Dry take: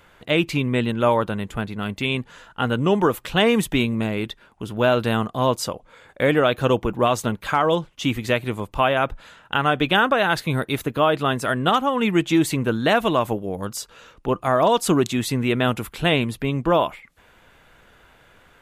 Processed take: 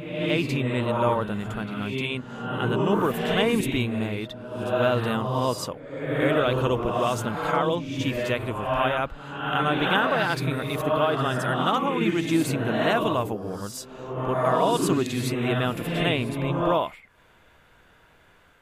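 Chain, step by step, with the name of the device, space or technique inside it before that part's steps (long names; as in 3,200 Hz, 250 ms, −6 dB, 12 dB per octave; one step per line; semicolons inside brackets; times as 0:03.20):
reverse reverb (reversed playback; convolution reverb RT60 1.2 s, pre-delay 45 ms, DRR 1.5 dB; reversed playback)
level −6 dB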